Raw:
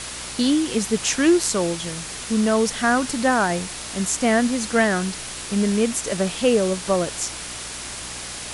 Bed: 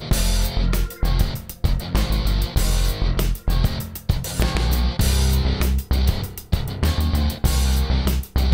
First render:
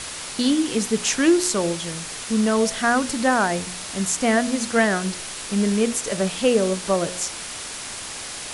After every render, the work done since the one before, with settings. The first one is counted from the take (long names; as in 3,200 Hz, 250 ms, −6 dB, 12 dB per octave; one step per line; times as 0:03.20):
hum removal 60 Hz, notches 11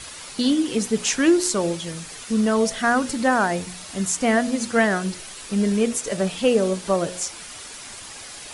broadband denoise 8 dB, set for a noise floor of −34 dBFS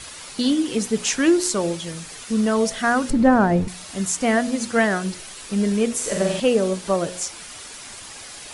0:03.10–0:03.68: spectral tilt −4 dB per octave
0:05.95–0:06.40: flutter between parallel walls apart 7.8 metres, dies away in 0.81 s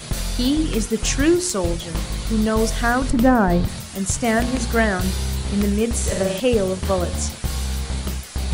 mix in bed −6 dB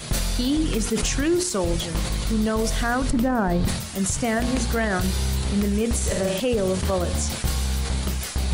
brickwall limiter −14 dBFS, peak gain reduction 11 dB
level that may fall only so fast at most 62 dB per second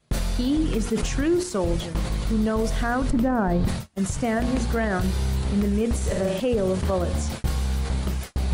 noise gate −28 dBFS, range −29 dB
high-shelf EQ 2,400 Hz −9 dB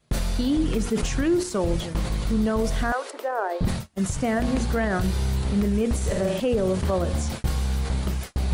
0:02.92–0:03.61: Butterworth high-pass 390 Hz 48 dB per octave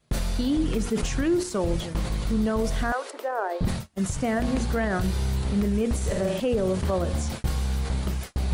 level −1.5 dB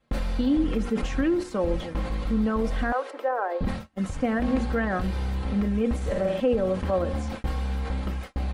bass and treble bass −3 dB, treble −15 dB
comb filter 3.8 ms, depth 53%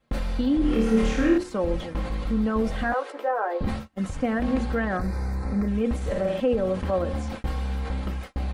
0:00.59–0:01.38: flutter between parallel walls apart 4.6 metres, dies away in 0.8 s
0:02.54–0:03.88: double-tracking delay 14 ms −5.5 dB
0:04.97–0:05.68: Butterworth band-reject 3,100 Hz, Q 1.5